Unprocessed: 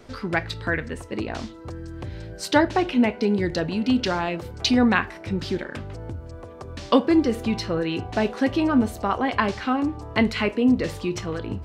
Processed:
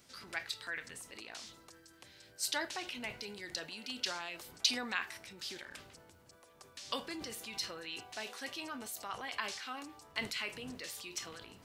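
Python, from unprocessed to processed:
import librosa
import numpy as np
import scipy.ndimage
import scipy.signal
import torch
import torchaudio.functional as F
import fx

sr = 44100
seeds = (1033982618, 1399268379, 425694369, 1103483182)

y = fx.dmg_wind(x, sr, seeds[0], corner_hz=110.0, level_db=-29.0)
y = np.diff(y, prepend=0.0)
y = fx.transient(y, sr, attack_db=0, sustain_db=6)
y = y * 10.0 ** (-1.5 / 20.0)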